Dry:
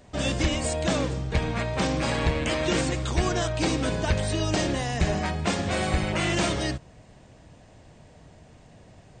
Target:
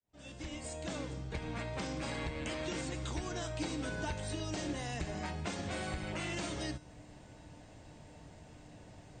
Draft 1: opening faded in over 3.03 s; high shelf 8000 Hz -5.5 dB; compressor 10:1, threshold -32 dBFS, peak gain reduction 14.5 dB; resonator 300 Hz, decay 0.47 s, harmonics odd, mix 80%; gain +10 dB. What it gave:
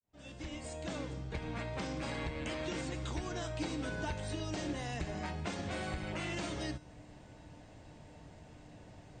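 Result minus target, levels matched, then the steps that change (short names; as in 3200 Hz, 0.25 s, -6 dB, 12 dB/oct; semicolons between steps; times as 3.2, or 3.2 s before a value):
8000 Hz band -3.0 dB
change: high shelf 8000 Hz +3 dB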